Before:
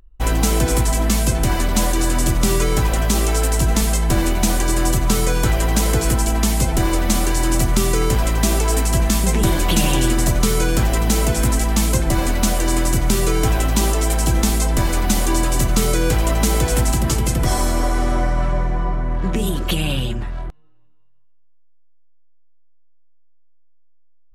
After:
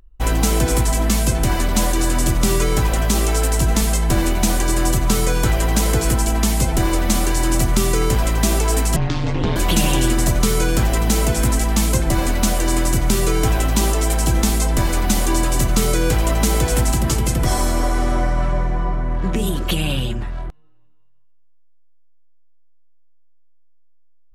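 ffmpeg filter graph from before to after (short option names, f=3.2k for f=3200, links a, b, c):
-filter_complex "[0:a]asettb=1/sr,asplit=3[a][b][c];[a]atrim=end=8.964[d];[b]atrim=start=8.96:end=9.56,asetpts=PTS-STARTPTS,afade=t=in:d=0.004:c=qsin,afade=t=out:st=0.596:d=0.004:c=qsin,lowpass=f=4.5k:w=0.5412,lowpass=f=4.5k:w=1.3066,aeval=exprs='val(0)*sin(2*PI*80*n/s)':c=same[e];[c]atrim=start=9.556[f];[d][e]acrossfade=d=0.004:c1=hsin:c2=qsin[g];[g][f]acrossfade=d=0.004:c1=qsin:c2=hsin"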